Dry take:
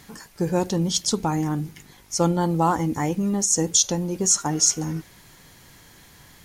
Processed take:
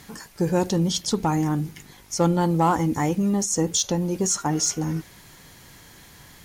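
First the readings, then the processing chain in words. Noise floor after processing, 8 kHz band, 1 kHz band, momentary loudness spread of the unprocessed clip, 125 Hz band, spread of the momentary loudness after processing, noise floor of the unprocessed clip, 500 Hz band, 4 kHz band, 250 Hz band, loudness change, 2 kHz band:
-49 dBFS, -5.0 dB, +0.5 dB, 11 LU, +1.5 dB, 8 LU, -51 dBFS, +1.0 dB, -2.5 dB, +1.5 dB, -1.0 dB, +1.0 dB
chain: dynamic bell 7.3 kHz, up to -7 dB, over -32 dBFS, Q 0.71; Chebyshev shaper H 5 -26 dB, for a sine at -8.5 dBFS

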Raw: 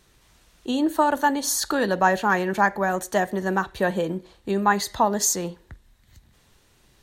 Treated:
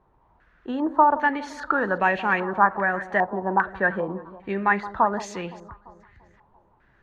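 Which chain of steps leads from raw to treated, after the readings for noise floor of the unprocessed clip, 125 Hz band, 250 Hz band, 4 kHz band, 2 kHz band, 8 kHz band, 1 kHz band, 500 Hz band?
-60 dBFS, -4.0 dB, -3.5 dB, -12.0 dB, +2.5 dB, under -20 dB, +1.0 dB, -2.5 dB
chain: echo whose repeats swap between lows and highs 171 ms, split 1 kHz, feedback 64%, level -14 dB; step-sequenced low-pass 2.5 Hz 920–2500 Hz; trim -4 dB

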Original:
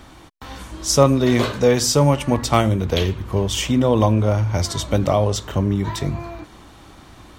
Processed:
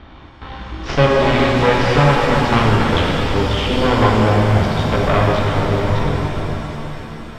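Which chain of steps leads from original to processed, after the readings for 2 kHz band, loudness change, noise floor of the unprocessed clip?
+11.0 dB, +3.0 dB, -45 dBFS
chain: Chebyshev shaper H 8 -11 dB, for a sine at -1 dBFS; bass shelf 130 Hz +3.5 dB; in parallel at -1.5 dB: compression, threshold -29 dBFS, peak gain reduction 21.5 dB; on the sum: low-pass 3.7 kHz 24 dB/octave; pitch-shifted reverb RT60 3.7 s, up +7 st, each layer -8 dB, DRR -2.5 dB; trim -4.5 dB

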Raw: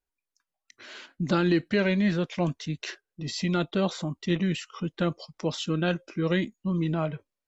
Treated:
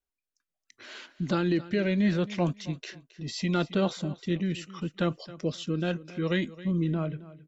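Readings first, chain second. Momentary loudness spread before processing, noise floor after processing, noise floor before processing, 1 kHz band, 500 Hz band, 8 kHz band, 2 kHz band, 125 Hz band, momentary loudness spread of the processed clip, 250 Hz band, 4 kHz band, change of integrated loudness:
11 LU, under -85 dBFS, under -85 dBFS, -2.5 dB, -2.0 dB, no reading, -3.5 dB, -1.0 dB, 11 LU, -1.5 dB, -3.0 dB, -1.5 dB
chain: rotary cabinet horn 0.75 Hz; feedback delay 269 ms, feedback 24%, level -17.5 dB

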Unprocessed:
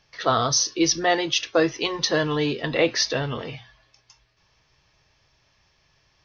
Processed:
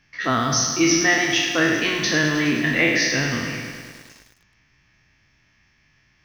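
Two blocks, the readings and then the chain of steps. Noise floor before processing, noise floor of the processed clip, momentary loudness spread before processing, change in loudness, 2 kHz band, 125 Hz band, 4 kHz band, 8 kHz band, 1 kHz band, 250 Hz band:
-65 dBFS, -62 dBFS, 9 LU, +3.0 dB, +9.0 dB, +3.5 dB, +1.5 dB, no reading, -0.5 dB, +5.0 dB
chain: spectral sustain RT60 0.88 s; graphic EQ 250/500/1000/2000/4000 Hz +9/-10/-5/+9/-8 dB; bit-crushed delay 104 ms, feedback 80%, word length 7-bit, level -10 dB

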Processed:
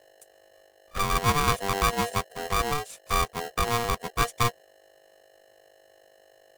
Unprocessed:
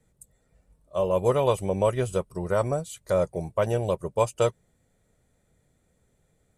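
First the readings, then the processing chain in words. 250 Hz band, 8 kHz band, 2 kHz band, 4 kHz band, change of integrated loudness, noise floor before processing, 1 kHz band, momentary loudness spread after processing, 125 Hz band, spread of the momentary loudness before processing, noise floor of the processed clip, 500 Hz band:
-3.0 dB, +8.0 dB, +10.0 dB, +11.0 dB, -0.5 dB, -69 dBFS, +5.5 dB, 6 LU, -2.0 dB, 6 LU, -59 dBFS, -9.0 dB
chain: touch-sensitive flanger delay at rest 8.5 ms, full sweep at -22.5 dBFS; hum 50 Hz, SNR 29 dB; polarity switched at an audio rate 590 Hz

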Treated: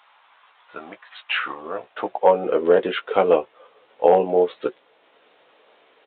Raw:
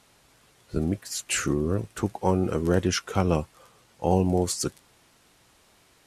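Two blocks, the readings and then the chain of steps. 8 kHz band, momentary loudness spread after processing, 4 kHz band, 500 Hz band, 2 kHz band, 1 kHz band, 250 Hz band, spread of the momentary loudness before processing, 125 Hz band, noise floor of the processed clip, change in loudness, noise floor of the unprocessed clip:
under -40 dB, 15 LU, +1.0 dB, +9.5 dB, +6.5 dB, +8.0 dB, -4.5 dB, 7 LU, -14.5 dB, -59 dBFS, +5.5 dB, -61 dBFS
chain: band-stop 370 Hz, Q 12; doubling 16 ms -7 dB; overload inside the chain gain 12 dB; transient shaper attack +2 dB, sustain -3 dB; high-pass sweep 980 Hz -> 460 Hz, 1.37–2.43 s; resampled via 8 kHz; trim +3.5 dB

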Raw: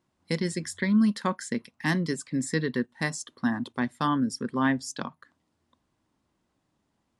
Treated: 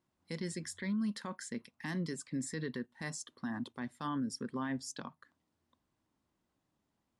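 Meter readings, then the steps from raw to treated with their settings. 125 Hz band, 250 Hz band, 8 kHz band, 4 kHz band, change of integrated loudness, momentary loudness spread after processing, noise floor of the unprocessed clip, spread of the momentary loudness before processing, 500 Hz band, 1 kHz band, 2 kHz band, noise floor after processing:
-10.5 dB, -11.5 dB, -7.0 dB, -9.5 dB, -11.0 dB, 7 LU, -77 dBFS, 9 LU, -11.5 dB, -13.0 dB, -13.0 dB, -83 dBFS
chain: peak limiter -22 dBFS, peak gain reduction 10 dB; trim -7 dB

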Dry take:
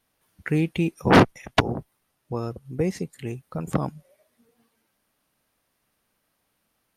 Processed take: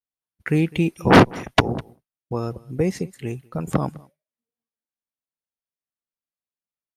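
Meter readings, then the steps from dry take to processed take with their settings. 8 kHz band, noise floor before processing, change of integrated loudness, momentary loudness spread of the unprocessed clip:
+3.0 dB, -74 dBFS, +3.0 dB, 17 LU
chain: delay 204 ms -23 dB; expander -40 dBFS; trim +3 dB

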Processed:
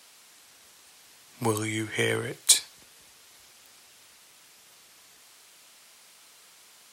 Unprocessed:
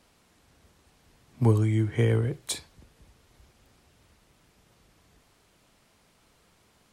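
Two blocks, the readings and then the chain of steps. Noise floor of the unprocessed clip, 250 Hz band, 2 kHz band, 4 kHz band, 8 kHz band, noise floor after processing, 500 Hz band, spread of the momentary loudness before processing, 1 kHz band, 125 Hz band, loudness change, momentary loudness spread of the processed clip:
-64 dBFS, -4.5 dB, +9.0 dB, +12.0 dB, +14.5 dB, -56 dBFS, -1.0 dB, 11 LU, +4.5 dB, -12.5 dB, +1.0 dB, 9 LU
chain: high-pass 1.1 kHz 6 dB/octave; treble shelf 3 kHz +8 dB; trim +7.5 dB

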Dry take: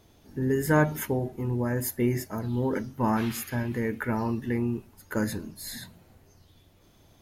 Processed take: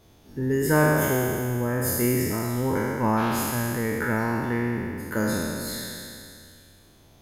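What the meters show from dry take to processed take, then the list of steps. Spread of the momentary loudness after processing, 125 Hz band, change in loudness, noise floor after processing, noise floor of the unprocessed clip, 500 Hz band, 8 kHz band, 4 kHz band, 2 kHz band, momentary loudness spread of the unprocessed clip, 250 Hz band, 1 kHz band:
12 LU, +2.5 dB, +3.5 dB, -55 dBFS, -59 dBFS, +4.0 dB, +7.5 dB, +7.0 dB, +6.0 dB, 13 LU, +2.5 dB, +5.0 dB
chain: spectral sustain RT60 2.44 s

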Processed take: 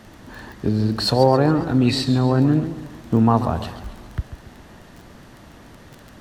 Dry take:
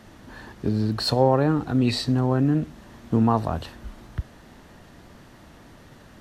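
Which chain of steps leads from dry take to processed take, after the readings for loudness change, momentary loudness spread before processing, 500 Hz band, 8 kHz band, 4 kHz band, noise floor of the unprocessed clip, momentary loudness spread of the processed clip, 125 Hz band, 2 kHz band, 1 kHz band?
+3.5 dB, 17 LU, +4.0 dB, +4.0 dB, +4.0 dB, -49 dBFS, 17 LU, +4.0 dB, +4.0 dB, +4.0 dB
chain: crackle 11 per s -33 dBFS; modulated delay 137 ms, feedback 47%, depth 148 cents, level -12 dB; trim +3.5 dB

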